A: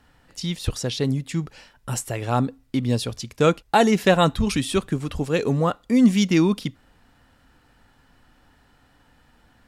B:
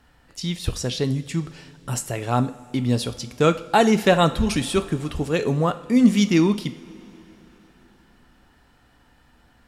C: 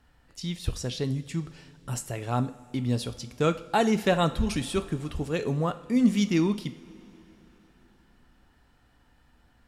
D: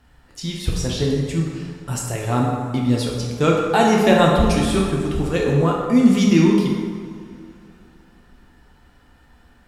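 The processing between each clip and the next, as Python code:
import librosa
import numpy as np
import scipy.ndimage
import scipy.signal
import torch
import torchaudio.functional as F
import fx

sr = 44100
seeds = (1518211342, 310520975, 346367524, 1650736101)

y1 = fx.rev_double_slope(x, sr, seeds[0], early_s=0.48, late_s=4.0, knee_db=-18, drr_db=9.5)
y2 = fx.low_shelf(y1, sr, hz=110.0, db=5.0)
y2 = F.gain(torch.from_numpy(y2), -7.0).numpy()
y3 = fx.rev_plate(y2, sr, seeds[1], rt60_s=1.9, hf_ratio=0.55, predelay_ms=0, drr_db=-1.5)
y3 = F.gain(torch.from_numpy(y3), 5.5).numpy()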